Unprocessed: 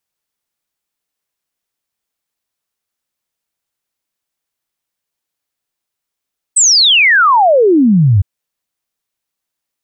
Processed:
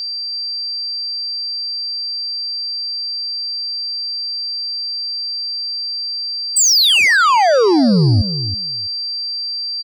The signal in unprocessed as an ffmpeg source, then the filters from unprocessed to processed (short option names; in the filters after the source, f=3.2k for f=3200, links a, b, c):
-f lavfi -i "aevalsrc='0.531*clip(min(t,1.66-t)/0.01,0,1)*sin(2*PI*8400*1.66/log(90/8400)*(exp(log(90/8400)*t/1.66)-1))':d=1.66:s=44100"
-filter_complex "[0:a]aeval=exprs='val(0)+0.0891*sin(2*PI*4700*n/s)':c=same,asoftclip=type=tanh:threshold=-9dB,asplit=2[a][b];[b]adelay=327,lowpass=f=1.7k:p=1,volume=-11dB,asplit=2[c][d];[d]adelay=327,lowpass=f=1.7k:p=1,volume=0.15[e];[a][c][e]amix=inputs=3:normalize=0"